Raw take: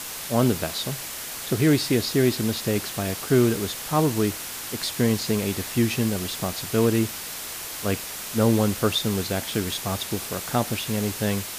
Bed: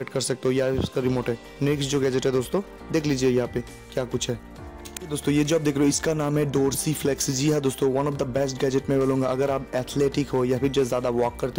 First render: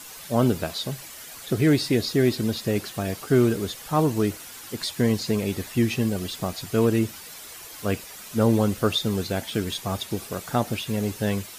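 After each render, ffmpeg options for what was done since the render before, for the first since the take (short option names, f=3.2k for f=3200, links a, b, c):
-af "afftdn=nr=10:nf=-35"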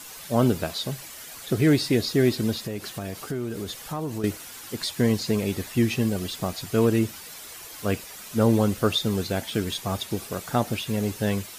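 -filter_complex "[0:a]asettb=1/sr,asplit=3[a][b][c];[a]atrim=end=2.554[d];[b]atrim=start=2.55:end=4.24,asetpts=PTS-STARTPTS,afade=t=in:d=0.004:c=qsin,afade=t=out:st=1.686:d=0.004:c=qsin,acompressor=threshold=-28dB:ratio=4:attack=3.2:release=140:knee=1:detection=peak[e];[c]atrim=start=4.236[f];[d][e]acrossfade=d=0.004:c1=hsin:c2=qsin[g];[g][f]acrossfade=d=0.004:c1=qsin:c2=hsin"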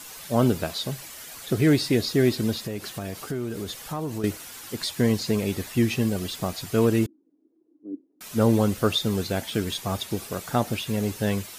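-filter_complex "[0:a]asettb=1/sr,asplit=3[a][b][c];[a]atrim=end=7.064[d];[b]atrim=start=7.06:end=8.21,asetpts=PTS-STARTPTS,afade=t=in:d=0.004:c=qsin,afade=t=out:st=1.146:d=0.004:c=qsin,asuperpass=centerf=300:order=4:qfactor=4[e];[c]atrim=start=8.206[f];[d][e]acrossfade=d=0.004:c1=hsin:c2=qsin[g];[g][f]acrossfade=d=0.004:c1=qsin:c2=hsin"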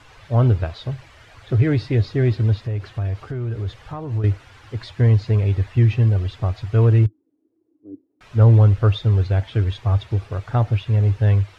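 -af "lowpass=2.5k,lowshelf=f=140:t=q:w=3:g=9.5"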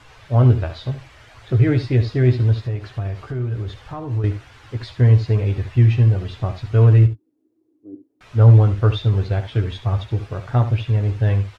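-filter_complex "[0:a]asplit=2[a][b];[b]adelay=16,volume=-8dB[c];[a][c]amix=inputs=2:normalize=0,asplit=2[d][e];[e]aecho=0:1:71:0.266[f];[d][f]amix=inputs=2:normalize=0"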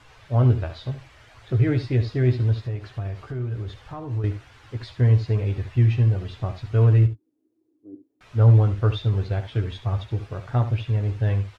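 -af "volume=-4.5dB"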